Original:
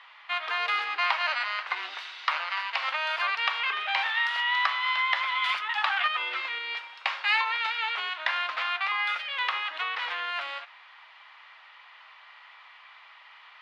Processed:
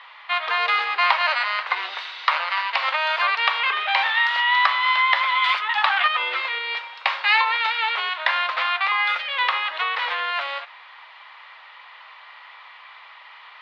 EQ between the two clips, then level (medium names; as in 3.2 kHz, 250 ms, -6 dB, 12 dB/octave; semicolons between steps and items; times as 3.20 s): graphic EQ 500/1000/2000/4000 Hz +12/+8/+6/+9 dB; -3.0 dB